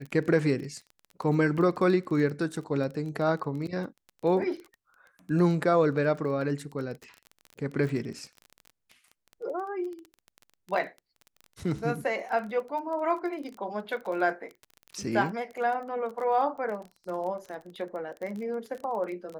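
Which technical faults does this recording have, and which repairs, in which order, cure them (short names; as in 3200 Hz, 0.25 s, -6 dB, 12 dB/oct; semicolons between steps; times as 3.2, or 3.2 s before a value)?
crackle 21/s -35 dBFS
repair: de-click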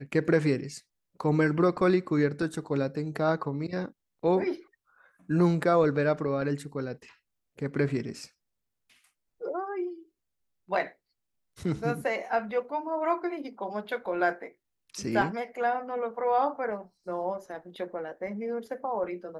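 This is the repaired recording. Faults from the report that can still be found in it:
none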